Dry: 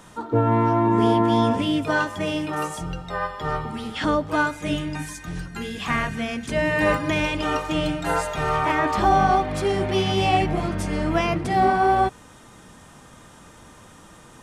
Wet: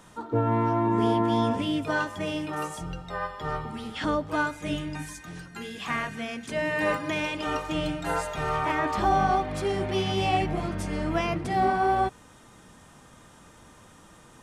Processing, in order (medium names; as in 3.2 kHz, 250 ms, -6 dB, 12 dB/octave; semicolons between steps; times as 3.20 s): 5.21–7.47 s: high-pass 200 Hz 6 dB/octave; trim -5 dB